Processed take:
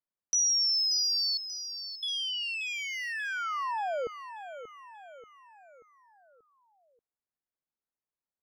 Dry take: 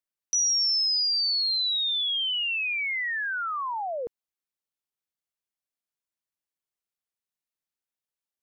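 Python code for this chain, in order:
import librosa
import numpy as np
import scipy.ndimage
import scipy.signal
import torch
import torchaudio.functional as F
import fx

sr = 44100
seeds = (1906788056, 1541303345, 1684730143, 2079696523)

y = fx.wiener(x, sr, points=15)
y = fx.cheby_ripple(y, sr, hz=1800.0, ripple_db=3, at=(1.37, 2.03))
y = fx.echo_feedback(y, sr, ms=584, feedback_pct=48, wet_db=-11.5)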